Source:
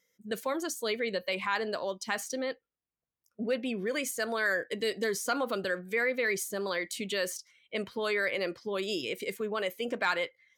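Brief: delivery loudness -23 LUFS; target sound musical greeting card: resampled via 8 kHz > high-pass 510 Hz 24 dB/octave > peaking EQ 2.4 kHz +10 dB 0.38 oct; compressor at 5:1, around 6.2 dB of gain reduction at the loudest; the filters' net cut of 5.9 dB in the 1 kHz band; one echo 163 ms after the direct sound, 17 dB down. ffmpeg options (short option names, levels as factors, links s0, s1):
-af "equalizer=f=1000:t=o:g=-8.5,acompressor=threshold=0.02:ratio=5,aecho=1:1:163:0.141,aresample=8000,aresample=44100,highpass=f=510:w=0.5412,highpass=f=510:w=1.3066,equalizer=f=2400:t=o:w=0.38:g=10,volume=5.31"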